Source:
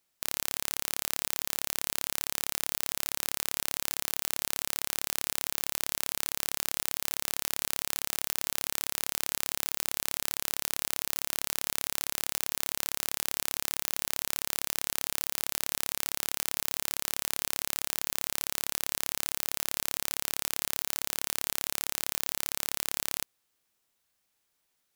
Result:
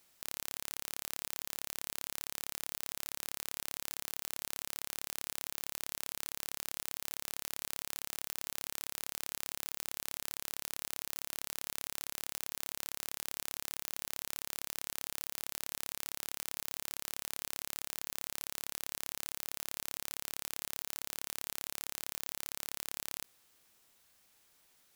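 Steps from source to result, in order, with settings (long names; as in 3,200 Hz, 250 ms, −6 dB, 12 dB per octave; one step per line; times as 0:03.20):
compressor whose output falls as the input rises −40 dBFS, ratio −0.5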